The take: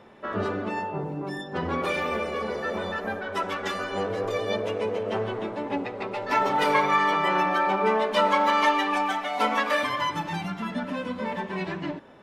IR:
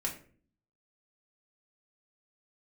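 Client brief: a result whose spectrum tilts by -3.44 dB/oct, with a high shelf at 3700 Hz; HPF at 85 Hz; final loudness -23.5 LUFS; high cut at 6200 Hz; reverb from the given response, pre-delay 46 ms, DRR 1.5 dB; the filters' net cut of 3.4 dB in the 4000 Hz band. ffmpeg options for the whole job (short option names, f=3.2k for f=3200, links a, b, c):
-filter_complex "[0:a]highpass=85,lowpass=6.2k,highshelf=f=3.7k:g=4,equalizer=f=4k:t=o:g=-7,asplit=2[a][b];[1:a]atrim=start_sample=2205,adelay=46[c];[b][c]afir=irnorm=-1:irlink=0,volume=-4.5dB[d];[a][d]amix=inputs=2:normalize=0"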